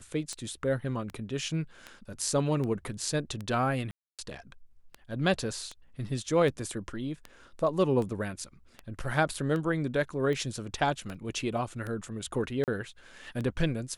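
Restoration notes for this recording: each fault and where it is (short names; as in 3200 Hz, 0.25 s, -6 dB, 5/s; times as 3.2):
tick 78 rpm -24 dBFS
3.91–4.19 gap 0.277 s
9.34 gap 2 ms
11.14–11.15 gap 6 ms
12.64–12.68 gap 38 ms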